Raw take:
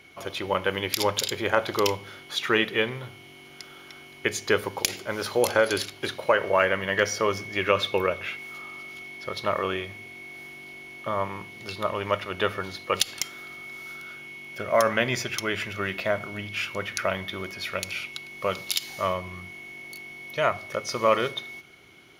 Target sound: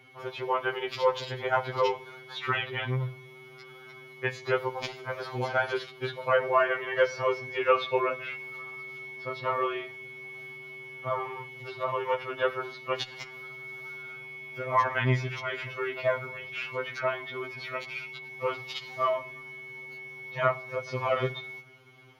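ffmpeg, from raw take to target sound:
-filter_complex "[0:a]equalizer=f=125:t=o:w=1:g=8,equalizer=f=500:t=o:w=1:g=3,equalizer=f=1k:t=o:w=1:g=7,equalizer=f=8k:t=o:w=1:g=-6,acrossover=split=5200[a][b];[b]acompressor=threshold=-57dB:ratio=4:attack=1:release=60[c];[a][c]amix=inputs=2:normalize=0,afftfilt=real='re*2.45*eq(mod(b,6),0)':imag='im*2.45*eq(mod(b,6),0)':win_size=2048:overlap=0.75,volume=-4.5dB"

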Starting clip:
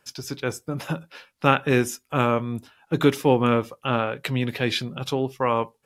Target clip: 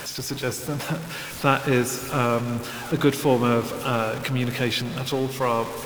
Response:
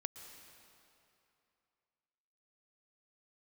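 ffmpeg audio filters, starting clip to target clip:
-filter_complex "[0:a]aeval=exprs='val(0)+0.5*0.0422*sgn(val(0))':c=same,asplit=2[a][b];[1:a]atrim=start_sample=2205,asetrate=36162,aresample=44100[c];[b][c]afir=irnorm=-1:irlink=0,volume=1dB[d];[a][d]amix=inputs=2:normalize=0,volume=-7.5dB"

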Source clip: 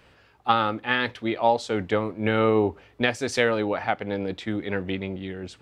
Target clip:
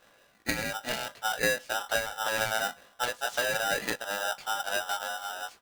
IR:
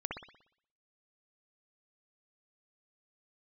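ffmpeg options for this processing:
-af "aecho=1:1:3.4:0.46,aeval=exprs='0.794*(cos(1*acos(clip(val(0)/0.794,-1,1)))-cos(1*PI/2))+0.0501*(cos(3*acos(clip(val(0)/0.794,-1,1)))-cos(3*PI/2))+0.0355*(cos(4*acos(clip(val(0)/0.794,-1,1)))-cos(4*PI/2))+0.0398*(cos(7*acos(clip(val(0)/0.794,-1,1)))-cos(7*PI/2))':c=same,flanger=delay=16.5:depth=2.5:speed=3,acompressor=threshold=-32dB:ratio=6,equalizer=f=480:t=o:w=1.7:g=10,aeval=exprs='val(0)*sgn(sin(2*PI*1100*n/s))':c=same"

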